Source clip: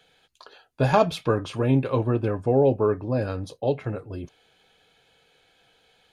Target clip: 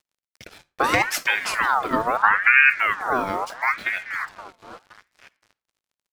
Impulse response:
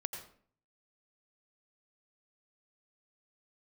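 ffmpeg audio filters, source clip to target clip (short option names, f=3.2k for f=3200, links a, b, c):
-filter_complex "[0:a]asplit=2[a][b];[b]adelay=520,lowpass=f=4.9k:p=1,volume=-17dB,asplit=2[c][d];[d]adelay=520,lowpass=f=4.9k:p=1,volume=0.39,asplit=2[e][f];[f]adelay=520,lowpass=f=4.9k:p=1,volume=0.39[g];[a][c][e][g]amix=inputs=4:normalize=0,acompressor=threshold=-24dB:ratio=2.5,asettb=1/sr,asplit=3[h][i][j];[h]atrim=end=0.844[k];[i]atrim=start=0.84:end=1.66,asetpts=PTS-STARTPTS,afade=t=in:d=0.004:c=qsin,afade=t=out:st=0.816:d=0.004:c=qsin,aemphasis=mode=production:type=75kf[l];[j]atrim=start=1.656[m];[k][l]acrossfade=d=0.004:c1=hsin:c2=qsin[n];[n][m]acrossfade=d=0.004:c1=qsin:c2=hsin,acrusher=bits=7:mix=0:aa=0.5,asettb=1/sr,asplit=3[o][p][q];[o]atrim=end=2.224[r];[p]atrim=start=2.22:end=2.7,asetpts=PTS-STARTPTS,afade=t=in:d=0.004:c=qsin,afade=t=out:st=0.476:d=0.004:c=qsin,tiltshelf=f=970:g=8[s];[q]atrim=start=2.696[t];[r][s]acrossfade=d=0.004:c1=hsin:c2=qsin[u];[u][t]acrossfade=d=0.004:c1=qsin:c2=hsin,asplit=2[v][w];[1:a]atrim=start_sample=2205,asetrate=74970,aresample=44100[x];[w][x]afir=irnorm=-1:irlink=0,volume=-9.5dB[y];[v][y]amix=inputs=2:normalize=0,aeval=exprs='val(0)*sin(2*PI*1400*n/s+1400*0.45/0.76*sin(2*PI*0.76*n/s))':c=same,volume=6dB"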